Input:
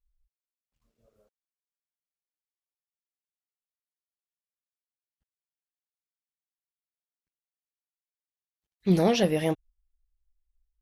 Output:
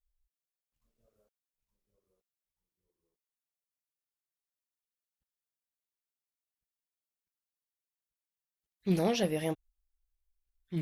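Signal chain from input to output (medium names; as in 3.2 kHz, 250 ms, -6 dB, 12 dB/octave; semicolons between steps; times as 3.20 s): rattle on loud lows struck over -25 dBFS, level -31 dBFS; treble shelf 8.8 kHz +7 dB; ever faster or slower copies 769 ms, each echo -2 st, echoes 2, each echo -6 dB; trim -6.5 dB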